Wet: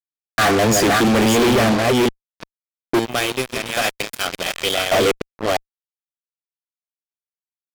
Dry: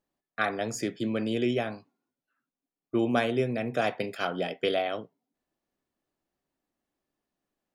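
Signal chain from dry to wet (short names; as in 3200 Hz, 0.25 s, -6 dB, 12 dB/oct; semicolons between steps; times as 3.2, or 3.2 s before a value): reverse delay 0.348 s, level -5 dB; 2.99–4.92 pre-emphasis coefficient 0.9; fuzz box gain 43 dB, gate -44 dBFS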